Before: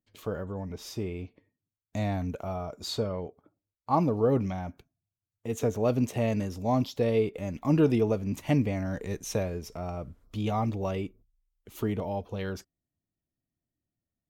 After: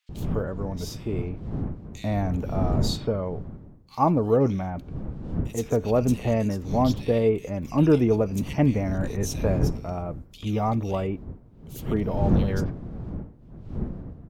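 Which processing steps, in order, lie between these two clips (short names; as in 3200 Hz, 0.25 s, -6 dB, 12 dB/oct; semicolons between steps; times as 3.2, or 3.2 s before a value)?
wind noise 170 Hz -35 dBFS; bands offset in time highs, lows 90 ms, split 2500 Hz; gain +4 dB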